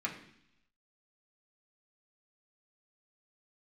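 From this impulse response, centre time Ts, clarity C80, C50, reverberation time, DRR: 19 ms, 11.5 dB, 9.0 dB, 0.70 s, −3.0 dB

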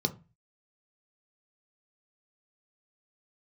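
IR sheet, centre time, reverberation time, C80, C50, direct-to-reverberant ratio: 6 ms, 0.30 s, 24.5 dB, 18.0 dB, 6.0 dB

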